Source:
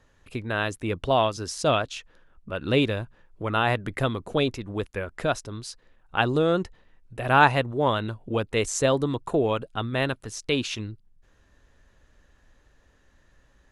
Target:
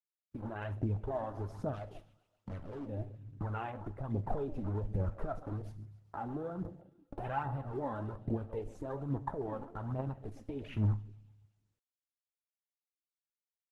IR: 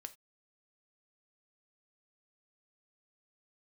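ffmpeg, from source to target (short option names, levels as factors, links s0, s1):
-filter_complex "[0:a]asettb=1/sr,asplit=3[s0][s1][s2];[s0]atrim=end=4.304[s3];[s1]atrim=start=4.3:end=5.39,asetpts=PTS-STARTPTS,afade=t=in:d=0.004:c=qsin,afade=t=out:st=1.086:d=0.004:c=qsin,aeval=exprs='val(0)+0.5*0.0237*sgn(val(0))':c=same[s4];[s2]atrim=start=5.386[s5];[s3][s4]acrossfade=d=0.004:c1=hsin:c2=qsin[s6];[s6][s5]acrossfade=d=0.004:c1=qsin:c2=hsin,acrusher=bits=5:mix=0:aa=0.000001,acompressor=threshold=0.0282:ratio=6,bass=f=250:g=5,treble=f=4000:g=-15,aecho=1:1:134|268|402|536|670|804:0.158|0.0935|0.0552|0.0326|0.0192|0.0113,alimiter=level_in=1.41:limit=0.0631:level=0:latency=1:release=115,volume=0.708,equalizer=f=100:t=o:w=0.33:g=6,equalizer=f=200:t=o:w=0.33:g=3,equalizer=f=800:t=o:w=0.33:g=8,equalizer=f=10000:t=o:w=0.33:g=9,afwtdn=0.01,asplit=3[s7][s8][s9];[s7]afade=t=out:st=1.73:d=0.02[s10];[s8]asoftclip=type=hard:threshold=0.0133,afade=t=in:st=1.73:d=0.02,afade=t=out:st=2.85:d=0.02[s11];[s9]afade=t=in:st=2.85:d=0.02[s12];[s10][s11][s12]amix=inputs=3:normalize=0,aphaser=in_gain=1:out_gain=1:delay=4:decay=0.57:speed=1.2:type=triangular[s13];[1:a]atrim=start_sample=2205[s14];[s13][s14]afir=irnorm=-1:irlink=0,volume=1.12" -ar 48000 -c:a libopus -b:a 16k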